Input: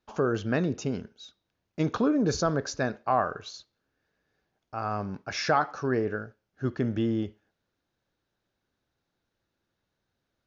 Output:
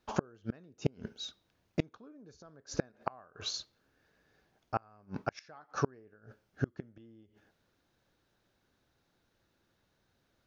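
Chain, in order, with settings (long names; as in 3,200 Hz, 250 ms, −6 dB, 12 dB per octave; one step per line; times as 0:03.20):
gate with flip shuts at −21 dBFS, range −35 dB
level +5.5 dB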